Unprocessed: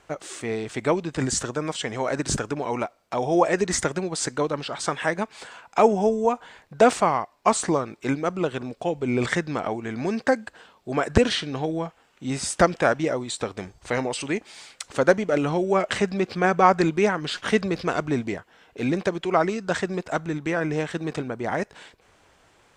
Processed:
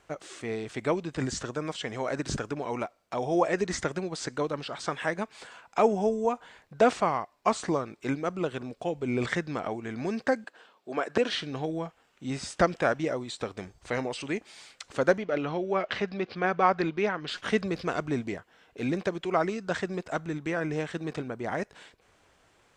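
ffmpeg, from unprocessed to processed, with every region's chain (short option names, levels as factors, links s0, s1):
-filter_complex "[0:a]asettb=1/sr,asplit=3[s0][s1][s2];[s0]atrim=end=10.444[s3];[s1]atrim=start=10.44:end=11.33,asetpts=PTS-STARTPTS,afade=t=in:d=0.004:c=qsin,afade=t=out:st=0.886:d=0.004:c=qsin,highpass=290,equalizer=f=9300:w=0.7:g=-5.5,bandreject=f=2000:w=27[s4];[s2]atrim=start=11.326[s5];[s3][s4]acrossfade=d=0.004:c1=hsin:c2=qsin[s6];[s6][s5]acrossfade=d=0.004:c1=qsin:c2=hsin,asettb=1/sr,asplit=3[s7][s8][s9];[s7]atrim=end=15.184[s10];[s8]atrim=start=15.18:end=17.28,asetpts=PTS-STARTPTS,afade=t=in:d=0.004:c=qsin,afade=t=out:st=2.096:d=0.004:c=qsin,lowpass=f=4800:w=0.5412,lowpass=f=4800:w=1.3066,lowshelf=f=320:g=-5[s11];[s9]atrim=start=17.276[s12];[s10][s11]acrossfade=d=0.004:c1=hsin:c2=qsin[s13];[s13][s12]acrossfade=d=0.004:c1=qsin:c2=hsin,equalizer=f=880:t=o:w=0.25:g=-2,acrossover=split=6400[s14][s15];[s15]acompressor=threshold=0.00355:ratio=4:attack=1:release=60[s16];[s14][s16]amix=inputs=2:normalize=0,volume=0.562"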